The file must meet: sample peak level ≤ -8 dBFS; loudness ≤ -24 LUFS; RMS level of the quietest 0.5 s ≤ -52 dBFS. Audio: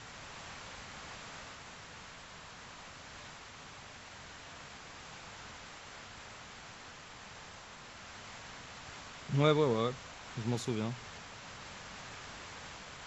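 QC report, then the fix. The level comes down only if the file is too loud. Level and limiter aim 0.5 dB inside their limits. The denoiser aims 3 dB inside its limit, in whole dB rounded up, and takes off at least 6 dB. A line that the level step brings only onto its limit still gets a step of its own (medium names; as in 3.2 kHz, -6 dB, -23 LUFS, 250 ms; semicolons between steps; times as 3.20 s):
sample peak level -14.5 dBFS: pass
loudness -40.5 LUFS: pass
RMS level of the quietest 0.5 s -51 dBFS: fail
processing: noise reduction 6 dB, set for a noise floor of -51 dBFS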